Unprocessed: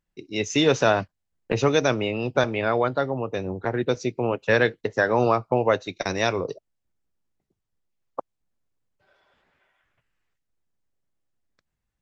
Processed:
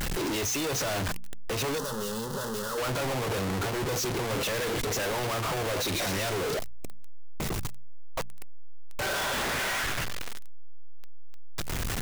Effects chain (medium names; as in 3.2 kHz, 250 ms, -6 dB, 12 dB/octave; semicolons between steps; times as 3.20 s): one-bit comparator; 1.78–2.78 s: static phaser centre 460 Hz, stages 8; de-hum 58.46 Hz, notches 4; trim -3 dB